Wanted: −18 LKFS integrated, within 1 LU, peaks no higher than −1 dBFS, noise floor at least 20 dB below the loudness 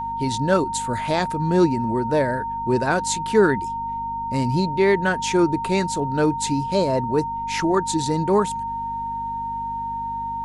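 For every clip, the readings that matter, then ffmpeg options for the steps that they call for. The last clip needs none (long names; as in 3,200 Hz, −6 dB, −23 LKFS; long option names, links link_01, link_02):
mains hum 50 Hz; hum harmonics up to 250 Hz; level of the hum −38 dBFS; interfering tone 920 Hz; level of the tone −25 dBFS; integrated loudness −22.0 LKFS; sample peak −5.0 dBFS; target loudness −18.0 LKFS
→ -af "bandreject=frequency=50:width_type=h:width=4,bandreject=frequency=100:width_type=h:width=4,bandreject=frequency=150:width_type=h:width=4,bandreject=frequency=200:width_type=h:width=4,bandreject=frequency=250:width_type=h:width=4"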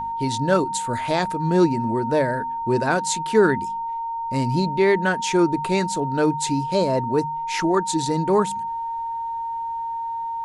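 mains hum none found; interfering tone 920 Hz; level of the tone −25 dBFS
→ -af "bandreject=frequency=920:width=30"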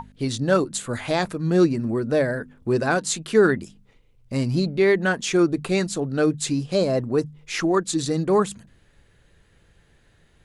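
interfering tone none found; integrated loudness −22.5 LKFS; sample peak −6.0 dBFS; target loudness −18.0 LKFS
→ -af "volume=4.5dB"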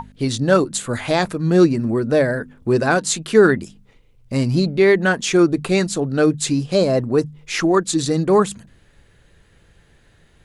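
integrated loudness −18.0 LKFS; sample peak −1.5 dBFS; background noise floor −55 dBFS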